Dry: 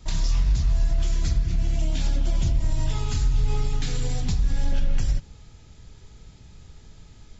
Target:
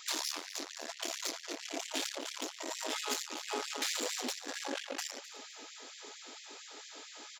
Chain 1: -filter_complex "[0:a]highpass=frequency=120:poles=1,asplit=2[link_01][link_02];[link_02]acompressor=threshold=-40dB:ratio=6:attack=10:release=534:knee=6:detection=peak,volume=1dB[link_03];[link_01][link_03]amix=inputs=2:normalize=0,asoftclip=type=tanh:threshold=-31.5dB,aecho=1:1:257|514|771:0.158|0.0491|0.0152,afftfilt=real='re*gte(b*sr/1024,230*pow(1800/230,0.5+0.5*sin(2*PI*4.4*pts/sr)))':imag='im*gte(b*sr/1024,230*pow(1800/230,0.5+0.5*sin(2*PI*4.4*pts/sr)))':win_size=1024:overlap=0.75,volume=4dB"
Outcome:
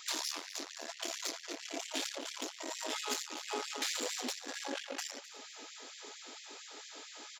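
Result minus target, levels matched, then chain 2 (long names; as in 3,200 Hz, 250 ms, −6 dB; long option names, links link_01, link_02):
downward compressor: peak gain reduction +9 dB
-filter_complex "[0:a]highpass=frequency=120:poles=1,asplit=2[link_01][link_02];[link_02]acompressor=threshold=-29.5dB:ratio=6:attack=10:release=534:knee=6:detection=peak,volume=1dB[link_03];[link_01][link_03]amix=inputs=2:normalize=0,asoftclip=type=tanh:threshold=-31.5dB,aecho=1:1:257|514|771:0.158|0.0491|0.0152,afftfilt=real='re*gte(b*sr/1024,230*pow(1800/230,0.5+0.5*sin(2*PI*4.4*pts/sr)))':imag='im*gte(b*sr/1024,230*pow(1800/230,0.5+0.5*sin(2*PI*4.4*pts/sr)))':win_size=1024:overlap=0.75,volume=4dB"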